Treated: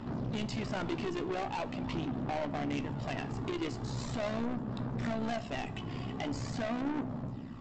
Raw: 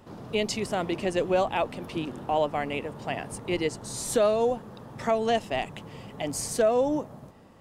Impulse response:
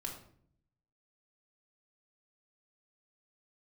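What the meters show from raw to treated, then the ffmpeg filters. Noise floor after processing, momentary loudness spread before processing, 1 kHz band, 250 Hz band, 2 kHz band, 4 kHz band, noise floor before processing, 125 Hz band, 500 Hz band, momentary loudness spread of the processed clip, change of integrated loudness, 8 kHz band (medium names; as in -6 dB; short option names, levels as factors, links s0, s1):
-42 dBFS, 11 LU, -9.0 dB, -2.5 dB, -6.5 dB, -8.0 dB, -49 dBFS, +2.0 dB, -13.0 dB, 4 LU, -8.5 dB, -16.5 dB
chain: -filter_complex "[0:a]aphaser=in_gain=1:out_gain=1:delay=2.8:decay=0.43:speed=0.42:type=sinusoidal,equalizer=f=125:t=o:w=0.33:g=11,equalizer=f=250:t=o:w=0.33:g=11,equalizer=f=500:t=o:w=0.33:g=-8,equalizer=f=6300:t=o:w=0.33:g=-8,alimiter=limit=0.0841:level=0:latency=1:release=393,acrossover=split=3100[s0][s1];[s1]acompressor=threshold=0.00708:ratio=4:attack=1:release=60[s2];[s0][s2]amix=inputs=2:normalize=0,aresample=16000,asoftclip=type=tanh:threshold=0.0168,aresample=44100,tremolo=f=65:d=0.571,asplit=2[s3][s4];[1:a]atrim=start_sample=2205,asetrate=42777,aresample=44100,adelay=18[s5];[s4][s5]afir=irnorm=-1:irlink=0,volume=0.299[s6];[s3][s6]amix=inputs=2:normalize=0,volume=1.88"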